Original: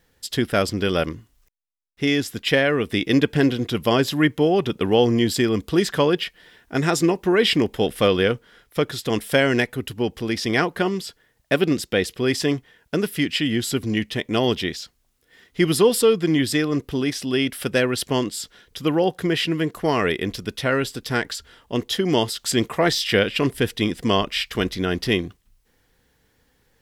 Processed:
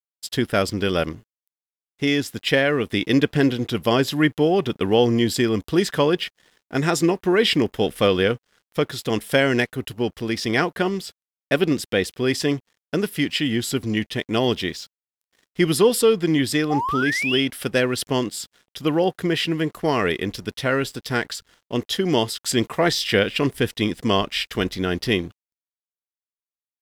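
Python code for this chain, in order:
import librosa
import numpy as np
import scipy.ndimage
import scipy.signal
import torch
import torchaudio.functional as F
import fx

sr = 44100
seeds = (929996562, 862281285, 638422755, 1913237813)

y = fx.spec_paint(x, sr, seeds[0], shape='rise', start_s=16.7, length_s=0.71, low_hz=730.0, high_hz=3400.0, level_db=-24.0)
y = np.sign(y) * np.maximum(np.abs(y) - 10.0 ** (-49.0 / 20.0), 0.0)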